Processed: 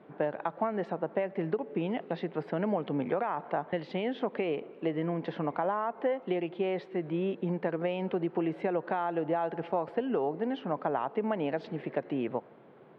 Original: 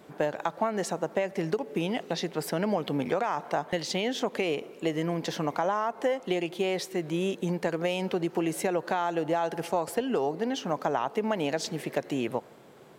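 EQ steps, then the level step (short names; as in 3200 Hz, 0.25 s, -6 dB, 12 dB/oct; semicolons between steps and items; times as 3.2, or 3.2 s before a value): BPF 120–4500 Hz; air absorption 460 m; -1.0 dB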